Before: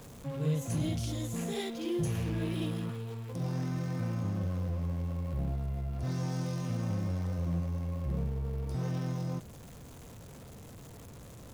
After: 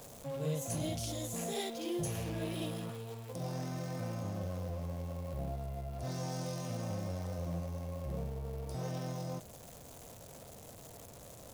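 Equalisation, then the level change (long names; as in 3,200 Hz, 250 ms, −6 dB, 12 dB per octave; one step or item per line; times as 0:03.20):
parametric band 640 Hz +11 dB 1 octave
high-shelf EQ 3,100 Hz +11.5 dB
−7.0 dB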